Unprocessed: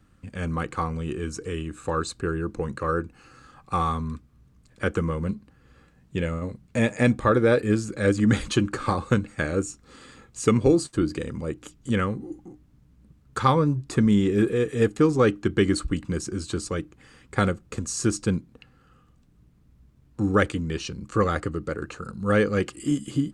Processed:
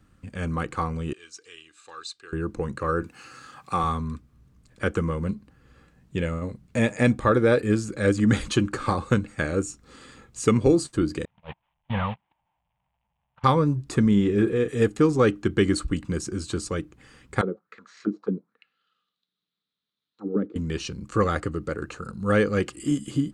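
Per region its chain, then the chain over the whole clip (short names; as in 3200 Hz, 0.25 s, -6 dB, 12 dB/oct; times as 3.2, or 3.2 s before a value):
1.13–2.33 band-pass 4000 Hz, Q 1.5 + comb 2.5 ms, depth 33%
3.02–3.84 HPF 110 Hz + mismatched tape noise reduction encoder only
11.25–13.44 delta modulation 16 kbps, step -34 dBFS + gate -28 dBFS, range -39 dB + EQ curve 180 Hz 0 dB, 340 Hz -21 dB, 620 Hz +2 dB, 900 Hz +14 dB, 1300 Hz -2 dB, 3600 Hz +8 dB, 7000 Hz +15 dB
14.08–14.68 LPF 3700 Hz 6 dB/oct + doubler 45 ms -13 dB
17.41–20.56 median filter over 5 samples + auto-wah 260–3700 Hz, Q 3.7, down, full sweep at -18 dBFS + speaker cabinet 130–8700 Hz, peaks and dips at 190 Hz +10 dB, 450 Hz +7 dB, 1300 Hz +6 dB, 2700 Hz -4 dB, 4000 Hz +8 dB
whole clip: dry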